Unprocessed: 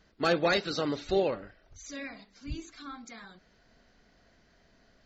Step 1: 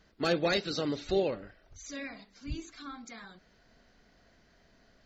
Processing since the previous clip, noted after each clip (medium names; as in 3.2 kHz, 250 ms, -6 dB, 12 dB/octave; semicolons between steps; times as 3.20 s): dynamic bell 1.1 kHz, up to -6 dB, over -42 dBFS, Q 0.83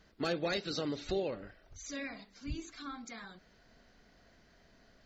compression 2:1, threshold -35 dBFS, peak gain reduction 6.5 dB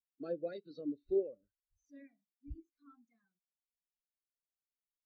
spectral contrast expander 2.5:1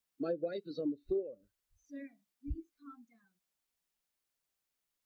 compression 6:1, threshold -41 dBFS, peak gain reduction 13.5 dB; trim +9 dB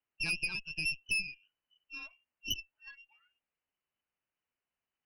frequency inversion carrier 3 kHz; Chebyshev shaper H 6 -12 dB, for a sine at -23.5 dBFS